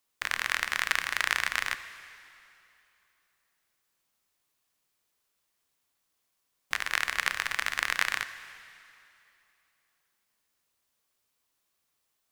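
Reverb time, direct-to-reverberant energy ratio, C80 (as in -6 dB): 2.8 s, 11.5 dB, 13.0 dB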